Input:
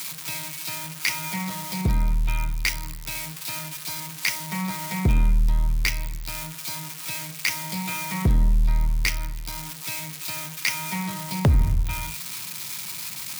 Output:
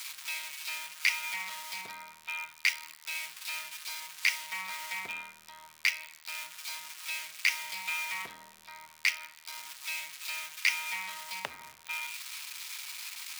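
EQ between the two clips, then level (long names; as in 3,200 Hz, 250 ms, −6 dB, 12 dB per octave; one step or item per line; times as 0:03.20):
high-pass filter 1,100 Hz 12 dB per octave
high-shelf EQ 7,700 Hz −8 dB
dynamic equaliser 2,600 Hz, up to +6 dB, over −44 dBFS, Q 1.8
−4.5 dB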